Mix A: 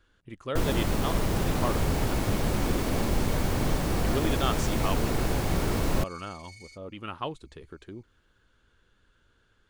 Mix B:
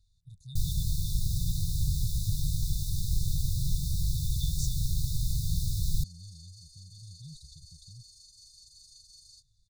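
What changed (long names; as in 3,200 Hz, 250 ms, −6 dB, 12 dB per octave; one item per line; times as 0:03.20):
second sound: entry +2.65 s
master: add linear-phase brick-wall band-stop 170–3,500 Hz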